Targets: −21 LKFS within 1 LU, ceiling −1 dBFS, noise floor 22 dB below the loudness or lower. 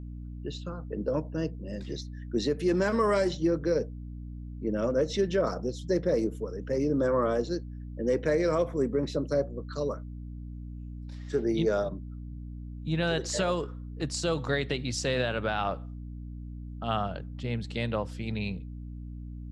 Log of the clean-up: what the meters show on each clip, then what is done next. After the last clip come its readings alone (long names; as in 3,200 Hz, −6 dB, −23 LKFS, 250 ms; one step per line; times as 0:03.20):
mains hum 60 Hz; hum harmonics up to 300 Hz; level of the hum −37 dBFS; integrated loudness −30.0 LKFS; sample peak −16.0 dBFS; target loudness −21.0 LKFS
→ hum removal 60 Hz, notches 5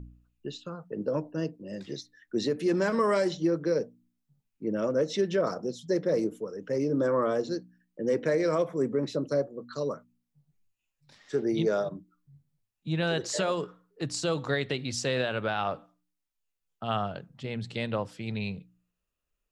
mains hum none found; integrated loudness −30.0 LKFS; sample peak −16.0 dBFS; target loudness −21.0 LKFS
→ level +9 dB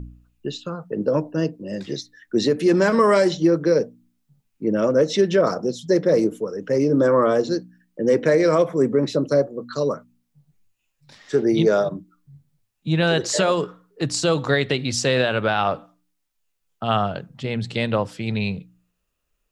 integrated loudness −21.0 LKFS; sample peak −7.0 dBFS; background noise floor −74 dBFS